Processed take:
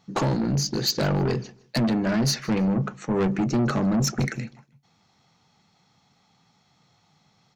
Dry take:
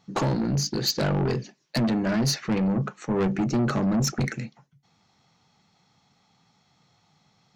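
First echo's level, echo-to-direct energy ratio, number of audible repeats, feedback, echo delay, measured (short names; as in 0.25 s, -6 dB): -23.0 dB, -22.5 dB, 2, 27%, 0.155 s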